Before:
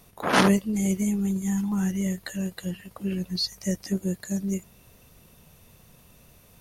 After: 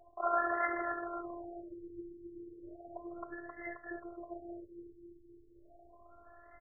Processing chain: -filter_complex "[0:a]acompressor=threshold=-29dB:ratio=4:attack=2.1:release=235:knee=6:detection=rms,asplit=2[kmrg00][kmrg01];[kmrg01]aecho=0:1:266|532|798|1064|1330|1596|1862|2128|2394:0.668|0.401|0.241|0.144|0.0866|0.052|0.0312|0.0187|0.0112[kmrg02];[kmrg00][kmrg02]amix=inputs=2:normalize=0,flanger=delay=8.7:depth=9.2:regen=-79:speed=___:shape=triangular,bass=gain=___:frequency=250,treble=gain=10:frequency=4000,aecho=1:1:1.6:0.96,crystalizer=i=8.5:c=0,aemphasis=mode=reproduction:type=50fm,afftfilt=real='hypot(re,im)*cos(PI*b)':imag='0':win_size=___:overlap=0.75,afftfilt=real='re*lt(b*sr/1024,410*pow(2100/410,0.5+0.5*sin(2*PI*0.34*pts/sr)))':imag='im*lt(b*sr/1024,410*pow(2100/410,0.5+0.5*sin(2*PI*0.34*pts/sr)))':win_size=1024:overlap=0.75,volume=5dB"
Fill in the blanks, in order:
1.1, -11, 512